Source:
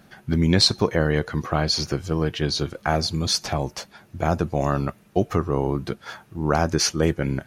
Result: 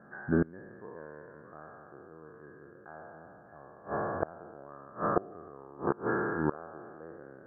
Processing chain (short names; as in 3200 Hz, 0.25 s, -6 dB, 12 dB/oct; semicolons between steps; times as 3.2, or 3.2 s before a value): spectral trails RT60 2.94 s; HPF 310 Hz 6 dB/oct; flipped gate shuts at -12 dBFS, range -26 dB; rippled Chebyshev low-pass 1700 Hz, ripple 3 dB